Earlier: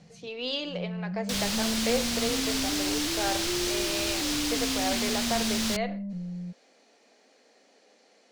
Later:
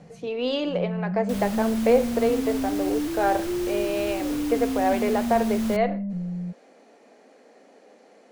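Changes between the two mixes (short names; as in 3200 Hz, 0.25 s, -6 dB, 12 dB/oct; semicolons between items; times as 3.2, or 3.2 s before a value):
speech +10.5 dB; first sound +5.5 dB; master: add bell 4700 Hz -14.5 dB 2.3 oct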